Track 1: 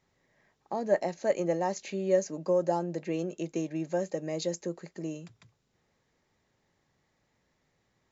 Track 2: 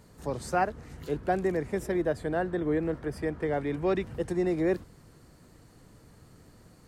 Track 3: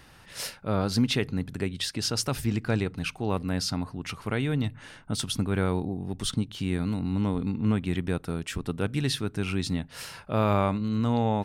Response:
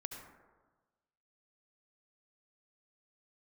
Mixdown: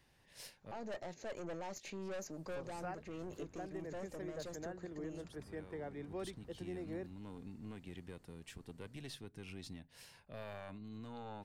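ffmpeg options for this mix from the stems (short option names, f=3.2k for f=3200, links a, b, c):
-filter_complex "[0:a]volume=-4dB,asplit=2[a][b];[1:a]adelay=2300,volume=-15.5dB[c];[2:a]equalizer=f=1.3k:t=o:w=0.24:g=-13,acrossover=split=340[d][e];[d]acompressor=threshold=-30dB:ratio=6[f];[f][e]amix=inputs=2:normalize=0,volume=-15.5dB[g];[b]apad=whole_len=504545[h];[g][h]sidechaincompress=threshold=-47dB:ratio=8:attack=5.3:release=1380[i];[a][i]amix=inputs=2:normalize=0,aeval=exprs='(tanh(63.1*val(0)+0.5)-tanh(0.5))/63.1':c=same,alimiter=level_in=13.5dB:limit=-24dB:level=0:latency=1:release=92,volume=-13.5dB,volume=0dB[j];[c][j]amix=inputs=2:normalize=0,alimiter=level_in=10.5dB:limit=-24dB:level=0:latency=1:release=299,volume=-10.5dB"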